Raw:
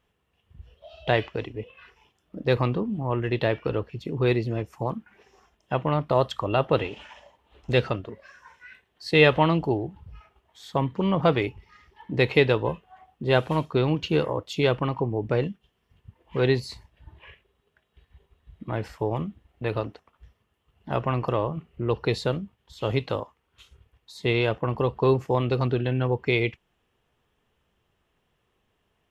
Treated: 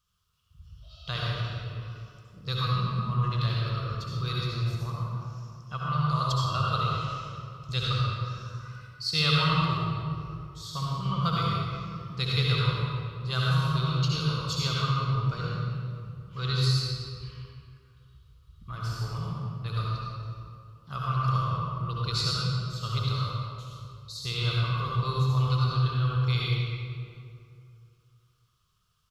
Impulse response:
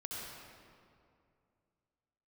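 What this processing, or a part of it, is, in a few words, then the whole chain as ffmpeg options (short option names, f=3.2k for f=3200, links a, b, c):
stairwell: -filter_complex "[1:a]atrim=start_sample=2205[a];[0:a][a]afir=irnorm=-1:irlink=0,firequalizer=gain_entry='entry(150,0);entry(260,-20);entry(470,-16);entry(850,-17);entry(1200,7);entry(1800,-12);entry(4500,13);entry(8300,8)':delay=0.05:min_phase=1"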